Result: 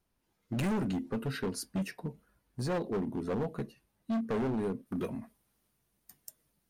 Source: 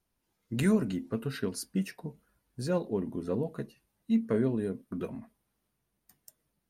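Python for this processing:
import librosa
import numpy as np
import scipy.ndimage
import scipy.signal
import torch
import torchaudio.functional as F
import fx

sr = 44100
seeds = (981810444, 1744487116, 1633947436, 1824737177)

y = fx.high_shelf(x, sr, hz=3900.0, db=fx.steps((0.0, -4.0), (4.85, 4.5)))
y = np.clip(10.0 ** (30.5 / 20.0) * y, -1.0, 1.0) / 10.0 ** (30.5 / 20.0)
y = y * librosa.db_to_amplitude(2.0)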